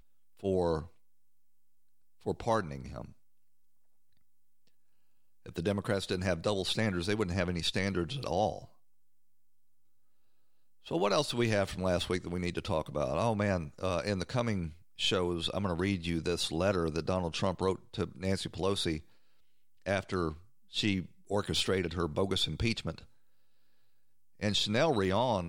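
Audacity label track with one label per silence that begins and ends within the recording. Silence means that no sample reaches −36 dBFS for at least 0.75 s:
0.820000	2.260000	silence
3.020000	5.460000	silence
8.580000	10.880000	silence
18.980000	19.860000	silence
22.980000	24.420000	silence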